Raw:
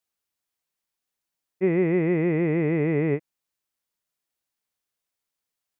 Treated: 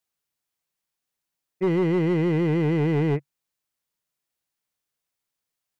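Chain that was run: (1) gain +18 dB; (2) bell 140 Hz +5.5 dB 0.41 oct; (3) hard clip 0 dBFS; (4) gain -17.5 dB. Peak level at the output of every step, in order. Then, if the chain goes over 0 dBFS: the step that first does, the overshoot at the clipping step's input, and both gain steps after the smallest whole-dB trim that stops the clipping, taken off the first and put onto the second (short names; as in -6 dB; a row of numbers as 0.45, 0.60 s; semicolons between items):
+6.0, +6.5, 0.0, -17.5 dBFS; step 1, 6.5 dB; step 1 +11 dB, step 4 -10.5 dB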